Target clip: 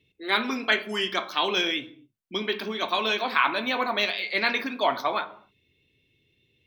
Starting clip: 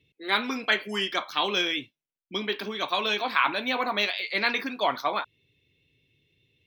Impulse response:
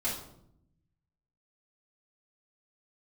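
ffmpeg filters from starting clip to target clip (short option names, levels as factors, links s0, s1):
-filter_complex "[0:a]bandreject=f=50:t=h:w=6,bandreject=f=100:t=h:w=6,bandreject=f=150:t=h:w=6,bandreject=f=200:t=h:w=6,asplit=2[s0][s1];[1:a]atrim=start_sample=2205,afade=t=out:st=0.32:d=0.01,atrim=end_sample=14553,highshelf=f=3400:g=-11.5[s2];[s1][s2]afir=irnorm=-1:irlink=0,volume=0.224[s3];[s0][s3]amix=inputs=2:normalize=0"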